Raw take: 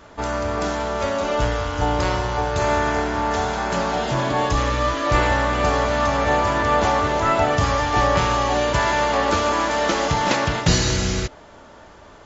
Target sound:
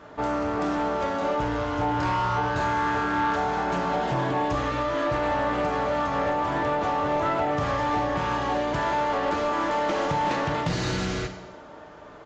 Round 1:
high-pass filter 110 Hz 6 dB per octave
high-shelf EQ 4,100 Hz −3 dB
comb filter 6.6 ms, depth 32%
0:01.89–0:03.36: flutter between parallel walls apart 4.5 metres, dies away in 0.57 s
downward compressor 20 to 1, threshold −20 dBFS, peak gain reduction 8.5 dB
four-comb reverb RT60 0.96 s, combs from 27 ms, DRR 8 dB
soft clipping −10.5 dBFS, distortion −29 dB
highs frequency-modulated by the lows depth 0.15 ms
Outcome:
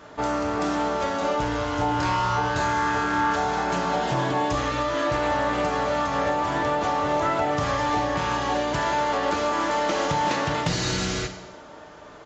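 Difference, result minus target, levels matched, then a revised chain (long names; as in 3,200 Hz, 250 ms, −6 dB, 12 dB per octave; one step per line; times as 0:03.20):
soft clipping: distortion −11 dB; 8,000 Hz band +7.0 dB
high-pass filter 110 Hz 6 dB per octave
high-shelf EQ 4,100 Hz −14.5 dB
comb filter 6.6 ms, depth 32%
0:01.89–0:03.36: flutter between parallel walls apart 4.5 metres, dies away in 0.57 s
downward compressor 20 to 1, threshold −20 dBFS, peak gain reduction 7.5 dB
four-comb reverb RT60 0.96 s, combs from 27 ms, DRR 8 dB
soft clipping −17.5 dBFS, distortion −18 dB
highs frequency-modulated by the lows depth 0.15 ms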